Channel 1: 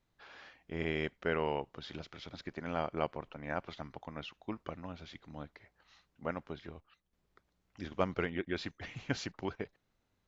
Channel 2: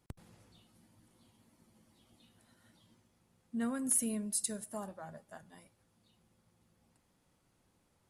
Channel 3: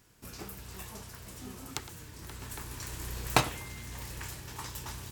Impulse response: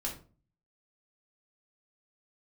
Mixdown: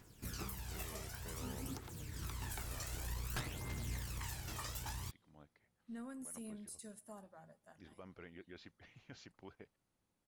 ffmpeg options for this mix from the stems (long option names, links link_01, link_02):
-filter_complex "[0:a]volume=-15dB[link_01];[1:a]adelay=2350,volume=-10dB[link_02];[2:a]aphaser=in_gain=1:out_gain=1:delay=1.7:decay=0.55:speed=0.54:type=triangular,volume=-1dB[link_03];[link_01][link_02]amix=inputs=2:normalize=0,alimiter=level_in=15.5dB:limit=-24dB:level=0:latency=1:release=15,volume=-15.5dB,volume=0dB[link_04];[link_03][link_04]amix=inputs=2:normalize=0,aeval=exprs='(tanh(14.1*val(0)+0.4)-tanh(0.4))/14.1':channel_layout=same,alimiter=level_in=8dB:limit=-24dB:level=0:latency=1:release=426,volume=-8dB"